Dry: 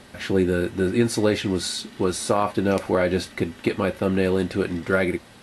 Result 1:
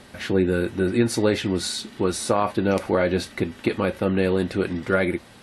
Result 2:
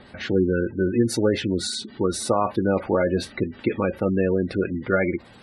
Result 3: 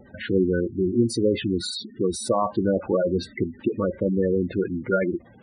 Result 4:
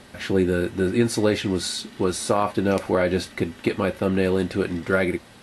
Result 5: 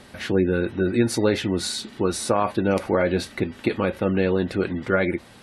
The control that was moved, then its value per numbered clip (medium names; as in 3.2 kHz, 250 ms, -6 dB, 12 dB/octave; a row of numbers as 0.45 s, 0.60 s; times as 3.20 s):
spectral gate, under each frame's peak: -45 dB, -20 dB, -10 dB, -60 dB, -35 dB